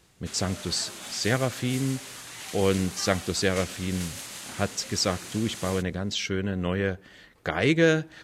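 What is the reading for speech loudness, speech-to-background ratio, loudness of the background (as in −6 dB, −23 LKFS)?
−27.5 LKFS, 10.5 dB, −38.0 LKFS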